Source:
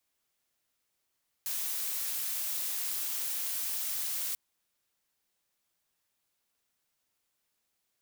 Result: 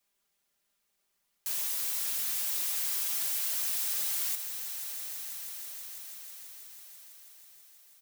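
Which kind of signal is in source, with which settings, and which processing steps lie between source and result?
noise blue, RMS −34 dBFS 2.89 s
comb filter 5 ms
on a send: echo that builds up and dies away 163 ms, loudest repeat 5, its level −14.5 dB

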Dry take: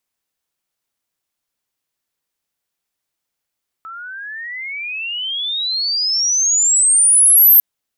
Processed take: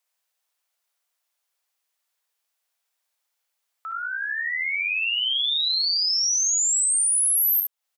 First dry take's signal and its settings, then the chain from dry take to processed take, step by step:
glide logarithmic 1,300 Hz → 13,000 Hz −29.5 dBFS → −5 dBFS 3.75 s
high-pass filter 540 Hz 24 dB per octave
downward compressor 4 to 1, threshold −24 dBFS
on a send: ambience of single reflections 56 ms −8 dB, 68 ms −6 dB

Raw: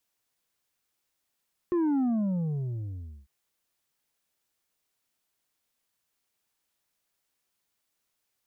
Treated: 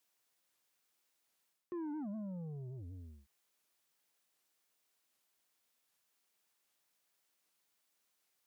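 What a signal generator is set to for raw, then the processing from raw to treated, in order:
bass drop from 360 Hz, over 1.55 s, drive 5 dB, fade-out 1.28 s, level −23.5 dB
reversed playback
downward compressor 8 to 1, threshold −39 dBFS
reversed playback
high-pass filter 230 Hz 6 dB per octave
wow of a warped record 78 rpm, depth 250 cents

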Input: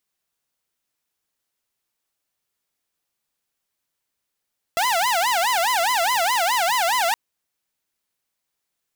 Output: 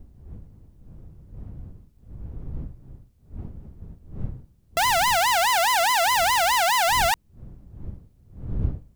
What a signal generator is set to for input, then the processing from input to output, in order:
siren wail 666–1,020 Hz 4.8 per second saw −15.5 dBFS 2.37 s
wind on the microphone 99 Hz −36 dBFS

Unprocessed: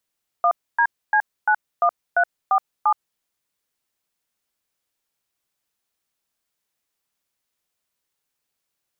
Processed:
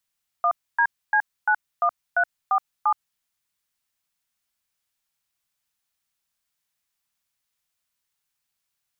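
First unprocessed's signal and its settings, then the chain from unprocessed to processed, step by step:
touch tones "1DC91347", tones 72 ms, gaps 273 ms, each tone −16.5 dBFS
parametric band 410 Hz −10.5 dB 1.5 octaves

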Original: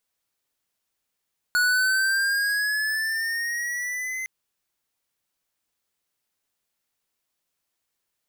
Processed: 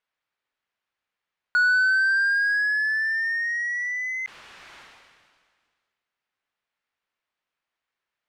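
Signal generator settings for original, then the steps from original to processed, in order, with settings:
pitch glide with a swell square, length 2.71 s, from 1,460 Hz, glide +6 semitones, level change −10.5 dB, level −20 dB
low-pass filter 2,000 Hz 12 dB per octave
tilt shelving filter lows −7 dB, about 840 Hz
level that may fall only so fast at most 32 dB per second

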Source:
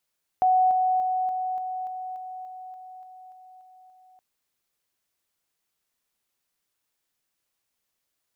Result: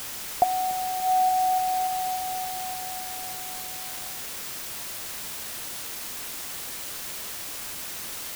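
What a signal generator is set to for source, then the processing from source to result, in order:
level staircase 743 Hz −16.5 dBFS, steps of −3 dB, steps 13, 0.29 s 0.00 s
low-pass filter 1,000 Hz 24 dB per octave
treble cut that deepens with the level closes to 360 Hz, closed at −21 dBFS
in parallel at +0.5 dB: bit-depth reduction 6 bits, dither triangular

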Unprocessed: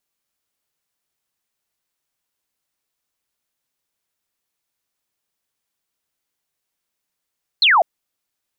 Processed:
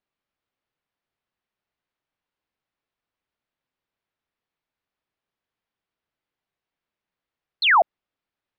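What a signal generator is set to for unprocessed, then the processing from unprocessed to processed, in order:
single falling chirp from 4,400 Hz, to 620 Hz, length 0.20 s sine, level −10 dB
high-frequency loss of the air 290 metres

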